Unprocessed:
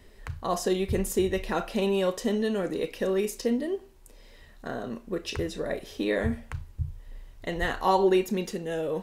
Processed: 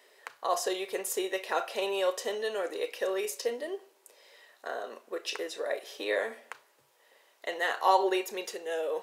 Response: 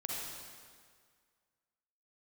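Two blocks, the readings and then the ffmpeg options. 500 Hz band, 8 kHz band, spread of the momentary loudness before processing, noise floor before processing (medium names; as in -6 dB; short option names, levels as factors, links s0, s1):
-4.0 dB, +0.5 dB, 12 LU, -52 dBFS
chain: -filter_complex "[0:a]highpass=f=460:w=0.5412,highpass=f=460:w=1.3066,asplit=2[s0][s1];[1:a]atrim=start_sample=2205,asetrate=70560,aresample=44100[s2];[s1][s2]afir=irnorm=-1:irlink=0,volume=0.0794[s3];[s0][s3]amix=inputs=2:normalize=0"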